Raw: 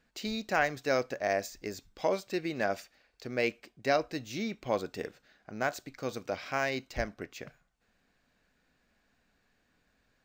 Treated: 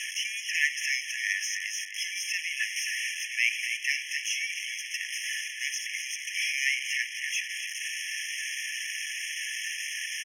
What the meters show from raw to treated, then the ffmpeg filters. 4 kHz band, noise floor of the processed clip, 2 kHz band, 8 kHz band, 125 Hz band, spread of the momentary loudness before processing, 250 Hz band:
+13.0 dB, −39 dBFS, +9.0 dB, +17.5 dB, below −40 dB, 12 LU, below −40 dB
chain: -filter_complex "[0:a]aeval=exprs='val(0)+0.5*0.0282*sgn(val(0))':channel_layout=same,acrossover=split=130|770|4100[link_01][link_02][link_03][link_04];[link_04]alimiter=level_in=9dB:limit=-24dB:level=0:latency=1:release=415,volume=-9dB[link_05];[link_01][link_02][link_03][link_05]amix=inputs=4:normalize=0,adynamicsmooth=sensitivity=3:basefreq=7100,equalizer=frequency=9500:width_type=o:width=2.1:gain=11,asplit=2[link_06][link_07];[link_07]adelay=267,lowpass=frequency=3400:poles=1,volume=-6.5dB,asplit=2[link_08][link_09];[link_09]adelay=267,lowpass=frequency=3400:poles=1,volume=0.48,asplit=2[link_10][link_11];[link_11]adelay=267,lowpass=frequency=3400:poles=1,volume=0.48,asplit=2[link_12][link_13];[link_13]adelay=267,lowpass=frequency=3400:poles=1,volume=0.48,asplit=2[link_14][link_15];[link_15]adelay=267,lowpass=frequency=3400:poles=1,volume=0.48,asplit=2[link_16][link_17];[link_17]adelay=267,lowpass=frequency=3400:poles=1,volume=0.48[link_18];[link_06][link_08][link_10][link_12][link_14][link_16][link_18]amix=inputs=7:normalize=0,afftfilt=real='re*eq(mod(floor(b*sr/1024/1700),2),1)':imag='im*eq(mod(floor(b*sr/1024/1700),2),1)':win_size=1024:overlap=0.75,volume=6dB"

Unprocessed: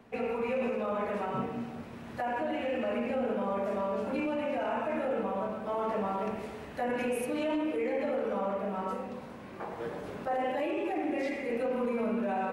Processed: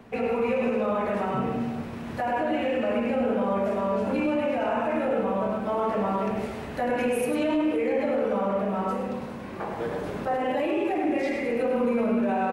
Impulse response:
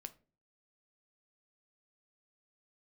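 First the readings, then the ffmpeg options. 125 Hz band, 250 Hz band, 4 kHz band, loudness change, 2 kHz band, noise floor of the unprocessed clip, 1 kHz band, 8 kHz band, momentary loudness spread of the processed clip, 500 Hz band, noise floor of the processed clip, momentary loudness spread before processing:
+8.0 dB, +7.5 dB, +5.5 dB, +6.5 dB, +5.5 dB, −45 dBFS, +5.5 dB, +5.5 dB, 7 LU, +6.0 dB, −36 dBFS, 8 LU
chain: -filter_complex "[0:a]lowshelf=frequency=190:gain=3.5,asplit=2[link_01][link_02];[link_02]alimiter=level_in=4dB:limit=-24dB:level=0:latency=1,volume=-4dB,volume=1dB[link_03];[link_01][link_03]amix=inputs=2:normalize=0,aecho=1:1:102:0.398"

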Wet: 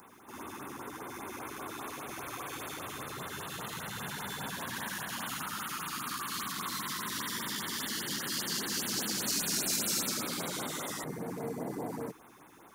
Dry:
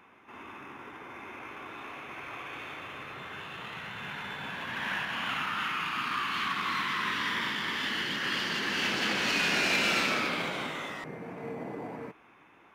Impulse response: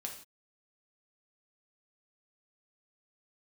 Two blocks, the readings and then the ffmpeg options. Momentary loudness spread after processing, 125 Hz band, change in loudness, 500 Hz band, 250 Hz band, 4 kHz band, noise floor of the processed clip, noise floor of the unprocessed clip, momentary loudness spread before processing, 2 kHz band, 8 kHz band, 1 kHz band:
12 LU, 0.0 dB, −4.5 dB, −2.5 dB, −1.0 dB, −4.5 dB, −56 dBFS, −58 dBFS, 17 LU, −10.0 dB, +9.5 dB, −5.5 dB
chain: -filter_complex "[0:a]acrossover=split=310|5900[link_01][link_02][link_03];[link_02]alimiter=level_in=1dB:limit=-24dB:level=0:latency=1:release=118,volume=-1dB[link_04];[link_01][link_04][link_03]amix=inputs=3:normalize=0,acompressor=threshold=-37dB:ratio=4,aexciter=amount=7.7:drive=1.2:freq=3500,equalizer=frequency=3100:width_type=o:width=1.4:gain=-10.5,afftfilt=real='re*(1-between(b*sr/1024,510*pow(6500/510,0.5+0.5*sin(2*PI*5*pts/sr))/1.41,510*pow(6500/510,0.5+0.5*sin(2*PI*5*pts/sr))*1.41))':imag='im*(1-between(b*sr/1024,510*pow(6500/510,0.5+0.5*sin(2*PI*5*pts/sr))/1.41,510*pow(6500/510,0.5+0.5*sin(2*PI*5*pts/sr))*1.41))':win_size=1024:overlap=0.75,volume=4.5dB"

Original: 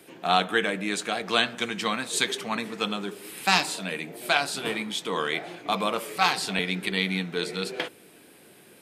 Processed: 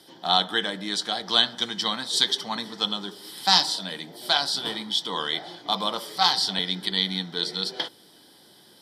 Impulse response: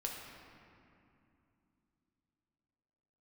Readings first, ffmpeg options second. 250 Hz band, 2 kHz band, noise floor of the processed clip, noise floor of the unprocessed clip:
−3.0 dB, −5.0 dB, −54 dBFS, −53 dBFS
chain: -af "superequalizer=7b=0.708:9b=1.78:12b=0.355:13b=3.16:14b=3.98,volume=-3dB"

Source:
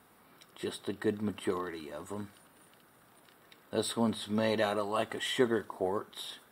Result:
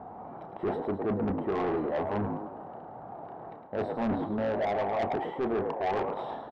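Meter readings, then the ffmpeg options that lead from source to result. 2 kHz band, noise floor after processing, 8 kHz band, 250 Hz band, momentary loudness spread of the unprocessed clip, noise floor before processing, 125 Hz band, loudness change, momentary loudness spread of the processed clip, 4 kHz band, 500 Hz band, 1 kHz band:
−1.5 dB, −45 dBFS, below −20 dB, +2.5 dB, 13 LU, −62 dBFS, +4.5 dB, +2.5 dB, 14 LU, −12.0 dB, +3.5 dB, +7.0 dB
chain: -filter_complex "[0:a]lowpass=frequency=760:width_type=q:width=4.9,areverse,acompressor=threshold=-35dB:ratio=8,areverse,equalizer=frequency=110:width=0.72:gain=3.5,asplit=2[link_01][link_02];[link_02]asplit=5[link_03][link_04][link_05][link_06][link_07];[link_03]adelay=108,afreqshift=55,volume=-9dB[link_08];[link_04]adelay=216,afreqshift=110,volume=-16.1dB[link_09];[link_05]adelay=324,afreqshift=165,volume=-23.3dB[link_10];[link_06]adelay=432,afreqshift=220,volume=-30.4dB[link_11];[link_07]adelay=540,afreqshift=275,volume=-37.5dB[link_12];[link_08][link_09][link_10][link_11][link_12]amix=inputs=5:normalize=0[link_13];[link_01][link_13]amix=inputs=2:normalize=0,acontrast=29,asplit=2[link_14][link_15];[link_15]adelay=31,volume=-11dB[link_16];[link_14][link_16]amix=inputs=2:normalize=0,asoftclip=type=tanh:threshold=-33dB,volume=8dB"

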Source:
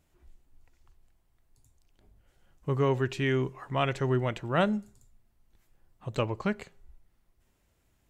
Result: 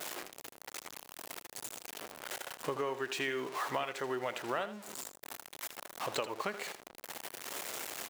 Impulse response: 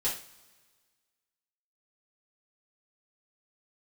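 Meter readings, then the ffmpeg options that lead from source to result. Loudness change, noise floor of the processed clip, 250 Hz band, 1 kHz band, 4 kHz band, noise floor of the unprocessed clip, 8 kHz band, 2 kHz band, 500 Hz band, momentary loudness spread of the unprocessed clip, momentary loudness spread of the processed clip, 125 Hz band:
−9.5 dB, −61 dBFS, −12.5 dB, −3.0 dB, +0.5 dB, −71 dBFS, +13.5 dB, −2.0 dB, −7.0 dB, 9 LU, 10 LU, −22.0 dB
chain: -af "aeval=exprs='val(0)+0.5*0.0106*sgn(val(0))':channel_layout=same,highpass=490,anlmdn=0.000251,acompressor=threshold=-40dB:ratio=10,aecho=1:1:81:0.224,volume=8dB"

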